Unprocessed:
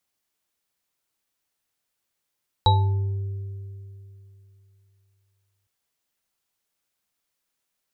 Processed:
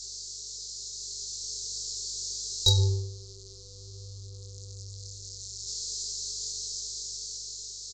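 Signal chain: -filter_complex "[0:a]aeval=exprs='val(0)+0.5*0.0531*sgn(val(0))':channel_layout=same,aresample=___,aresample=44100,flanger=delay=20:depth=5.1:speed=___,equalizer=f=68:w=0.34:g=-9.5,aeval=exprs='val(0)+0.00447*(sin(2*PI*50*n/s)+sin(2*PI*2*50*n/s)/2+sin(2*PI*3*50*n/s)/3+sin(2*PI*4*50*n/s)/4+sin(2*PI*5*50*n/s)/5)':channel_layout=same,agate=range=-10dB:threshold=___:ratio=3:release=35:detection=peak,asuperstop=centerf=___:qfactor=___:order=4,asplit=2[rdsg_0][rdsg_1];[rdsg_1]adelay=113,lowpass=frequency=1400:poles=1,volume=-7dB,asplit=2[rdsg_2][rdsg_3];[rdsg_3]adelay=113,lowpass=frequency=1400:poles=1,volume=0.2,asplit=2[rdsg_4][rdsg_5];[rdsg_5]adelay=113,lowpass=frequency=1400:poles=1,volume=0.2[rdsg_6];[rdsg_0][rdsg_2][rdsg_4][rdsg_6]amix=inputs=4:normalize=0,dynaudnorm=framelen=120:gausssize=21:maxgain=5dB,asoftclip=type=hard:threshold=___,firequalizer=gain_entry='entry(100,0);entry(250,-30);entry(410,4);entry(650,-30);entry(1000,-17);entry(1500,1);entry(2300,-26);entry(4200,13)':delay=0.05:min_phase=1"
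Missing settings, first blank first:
16000, 0.44, -31dB, 1700, 0.58, -11.5dB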